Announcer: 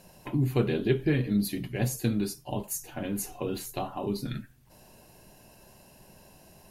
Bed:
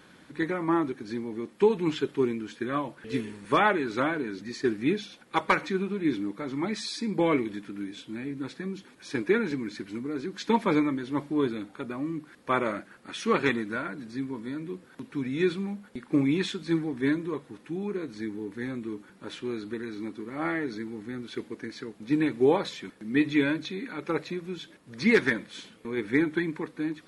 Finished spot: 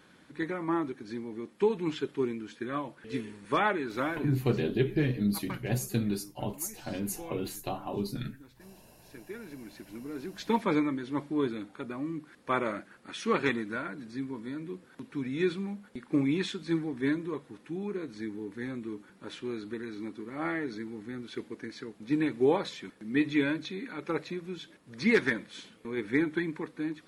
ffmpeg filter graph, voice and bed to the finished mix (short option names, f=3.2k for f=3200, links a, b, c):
-filter_complex "[0:a]adelay=3900,volume=-2dB[a];[1:a]volume=11.5dB,afade=t=out:st=4.27:d=0.35:silence=0.188365,afade=t=in:st=9.36:d=1.26:silence=0.158489[b];[a][b]amix=inputs=2:normalize=0"